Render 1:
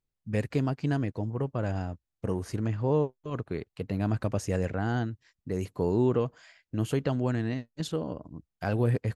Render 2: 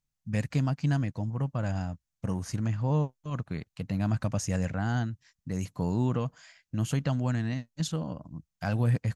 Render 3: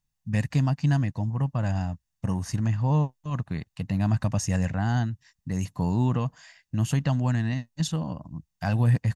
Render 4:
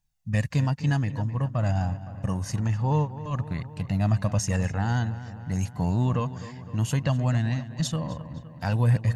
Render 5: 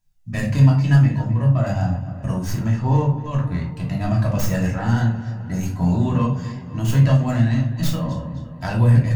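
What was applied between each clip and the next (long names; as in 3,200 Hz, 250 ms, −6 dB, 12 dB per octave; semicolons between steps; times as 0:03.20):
graphic EQ with 15 bands 160 Hz +5 dB, 400 Hz −12 dB, 6,300 Hz +7 dB
comb filter 1.1 ms, depth 35%; level +2.5 dB
flanger 0.53 Hz, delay 1.2 ms, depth 1.2 ms, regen +43%; feedback echo with a low-pass in the loop 257 ms, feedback 65%, low-pass 3,600 Hz, level −14 dB; level +5 dB
stylus tracing distortion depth 0.13 ms; rectangular room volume 370 cubic metres, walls furnished, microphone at 2.9 metres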